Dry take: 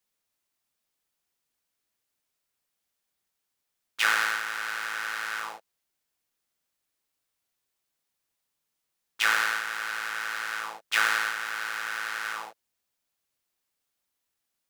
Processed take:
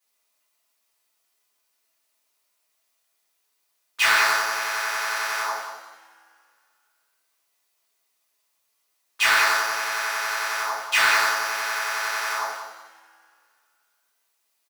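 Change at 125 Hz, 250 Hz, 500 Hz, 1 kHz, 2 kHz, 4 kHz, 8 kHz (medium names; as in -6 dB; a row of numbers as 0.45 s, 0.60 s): no reading, +3.5 dB, +11.5 dB, +7.5 dB, +5.0 dB, +6.5 dB, +8.5 dB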